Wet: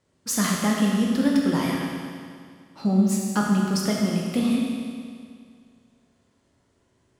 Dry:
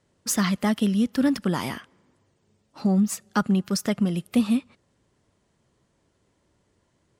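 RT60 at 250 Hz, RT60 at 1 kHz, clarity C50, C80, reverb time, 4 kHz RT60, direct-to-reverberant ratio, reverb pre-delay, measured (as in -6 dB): 2.1 s, 2.1 s, 0.0 dB, 1.5 dB, 2.1 s, 2.0 s, -2.5 dB, 11 ms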